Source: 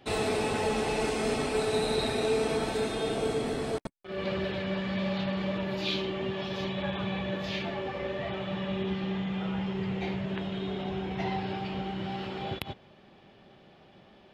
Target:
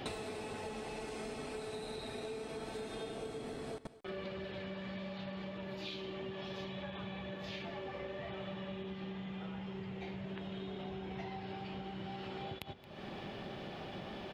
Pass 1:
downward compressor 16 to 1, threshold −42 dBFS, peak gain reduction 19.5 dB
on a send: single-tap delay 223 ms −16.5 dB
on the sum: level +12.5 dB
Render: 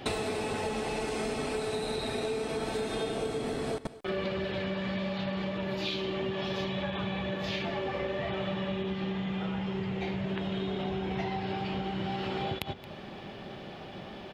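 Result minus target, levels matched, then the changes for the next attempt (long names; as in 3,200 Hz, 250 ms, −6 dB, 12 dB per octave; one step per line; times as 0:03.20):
downward compressor: peak gain reduction −10.5 dB
change: downward compressor 16 to 1, threshold −53 dBFS, peak gain reduction 29.5 dB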